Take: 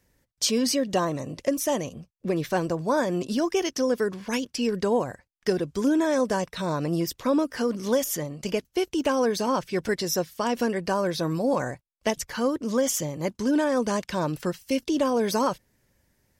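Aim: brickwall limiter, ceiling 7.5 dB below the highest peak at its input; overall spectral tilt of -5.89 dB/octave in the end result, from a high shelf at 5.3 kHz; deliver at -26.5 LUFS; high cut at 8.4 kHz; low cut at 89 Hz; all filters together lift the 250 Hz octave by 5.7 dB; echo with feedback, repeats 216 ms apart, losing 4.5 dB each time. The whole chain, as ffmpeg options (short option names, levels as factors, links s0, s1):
-af "highpass=89,lowpass=8400,equalizer=f=250:t=o:g=7,highshelf=f=5300:g=-6.5,alimiter=limit=0.158:level=0:latency=1,aecho=1:1:216|432|648|864|1080|1296|1512|1728|1944:0.596|0.357|0.214|0.129|0.0772|0.0463|0.0278|0.0167|0.01,volume=0.75"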